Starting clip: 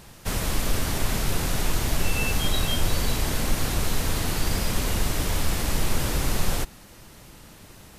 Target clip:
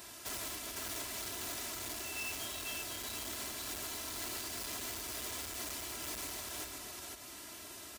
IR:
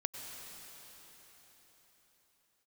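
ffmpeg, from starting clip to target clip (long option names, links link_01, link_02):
-filter_complex "[0:a]aecho=1:1:3:0.73,acompressor=threshold=-25dB:ratio=3,highpass=frequency=49:width=0.5412,highpass=frequency=49:width=1.3066,equalizer=frequency=13000:width=0.84:gain=-12,asplit=2[link_01][link_02];[link_02]aecho=0:1:506:0.596[link_03];[link_01][link_03]amix=inputs=2:normalize=0,volume=29.5dB,asoftclip=hard,volume=-29.5dB,alimiter=level_in=10dB:limit=-24dB:level=0:latency=1:release=86,volume=-10dB,aemphasis=mode=production:type=bsi,volume=-4.5dB"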